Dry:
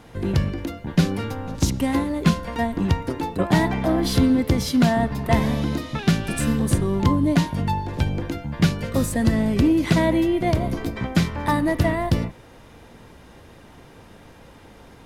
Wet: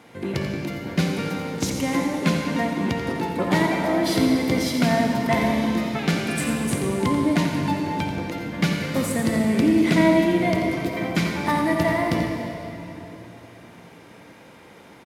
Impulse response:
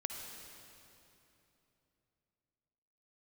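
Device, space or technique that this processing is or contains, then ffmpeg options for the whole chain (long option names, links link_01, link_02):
PA in a hall: -filter_complex "[0:a]highpass=170,equalizer=frequency=2200:width_type=o:width=0.26:gain=7,aecho=1:1:87:0.316[link_01];[1:a]atrim=start_sample=2205[link_02];[link_01][link_02]afir=irnorm=-1:irlink=0"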